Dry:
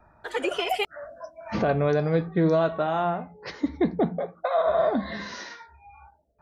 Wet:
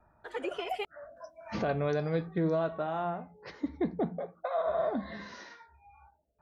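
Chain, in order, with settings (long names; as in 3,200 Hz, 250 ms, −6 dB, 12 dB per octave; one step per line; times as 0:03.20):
high-shelf EQ 2,900 Hz −9 dB, from 0:01.17 +5 dB, from 0:02.38 −6 dB
level −7.5 dB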